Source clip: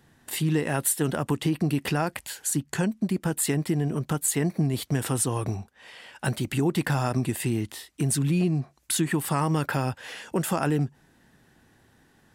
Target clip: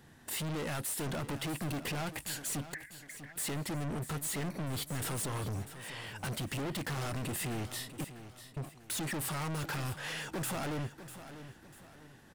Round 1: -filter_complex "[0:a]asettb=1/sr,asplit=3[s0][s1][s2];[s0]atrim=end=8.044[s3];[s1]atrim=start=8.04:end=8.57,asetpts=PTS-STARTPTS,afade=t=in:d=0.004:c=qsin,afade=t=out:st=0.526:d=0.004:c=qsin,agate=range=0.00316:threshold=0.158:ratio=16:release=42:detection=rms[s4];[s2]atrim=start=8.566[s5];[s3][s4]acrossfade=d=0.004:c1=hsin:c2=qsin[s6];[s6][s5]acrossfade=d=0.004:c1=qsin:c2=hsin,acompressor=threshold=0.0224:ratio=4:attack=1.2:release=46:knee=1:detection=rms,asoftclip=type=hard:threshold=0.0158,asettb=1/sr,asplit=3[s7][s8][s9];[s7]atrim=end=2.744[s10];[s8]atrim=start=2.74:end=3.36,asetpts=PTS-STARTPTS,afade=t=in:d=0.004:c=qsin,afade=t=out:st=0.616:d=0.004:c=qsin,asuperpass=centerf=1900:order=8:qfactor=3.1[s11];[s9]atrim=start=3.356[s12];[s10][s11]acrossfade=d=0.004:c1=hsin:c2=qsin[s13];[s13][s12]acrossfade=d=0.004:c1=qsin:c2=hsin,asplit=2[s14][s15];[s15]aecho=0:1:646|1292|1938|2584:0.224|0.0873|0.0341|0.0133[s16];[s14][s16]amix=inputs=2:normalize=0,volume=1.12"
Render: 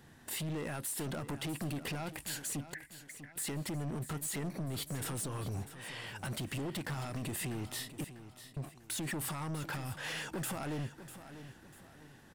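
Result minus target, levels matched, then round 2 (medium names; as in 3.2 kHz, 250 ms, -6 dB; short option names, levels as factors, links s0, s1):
compression: peak gain reduction +14 dB
-filter_complex "[0:a]asettb=1/sr,asplit=3[s0][s1][s2];[s0]atrim=end=8.044[s3];[s1]atrim=start=8.04:end=8.57,asetpts=PTS-STARTPTS,afade=t=in:d=0.004:c=qsin,afade=t=out:st=0.526:d=0.004:c=qsin,agate=range=0.00316:threshold=0.158:ratio=16:release=42:detection=rms[s4];[s2]atrim=start=8.566[s5];[s3][s4]acrossfade=d=0.004:c1=hsin:c2=qsin[s6];[s6][s5]acrossfade=d=0.004:c1=qsin:c2=hsin,asoftclip=type=hard:threshold=0.0158,asettb=1/sr,asplit=3[s7][s8][s9];[s7]atrim=end=2.744[s10];[s8]atrim=start=2.74:end=3.36,asetpts=PTS-STARTPTS,afade=t=in:d=0.004:c=qsin,afade=t=out:st=0.616:d=0.004:c=qsin,asuperpass=centerf=1900:order=8:qfactor=3.1[s11];[s9]atrim=start=3.356[s12];[s10][s11]acrossfade=d=0.004:c1=hsin:c2=qsin[s13];[s13][s12]acrossfade=d=0.004:c1=qsin:c2=hsin,asplit=2[s14][s15];[s15]aecho=0:1:646|1292|1938|2584:0.224|0.0873|0.0341|0.0133[s16];[s14][s16]amix=inputs=2:normalize=0,volume=1.12"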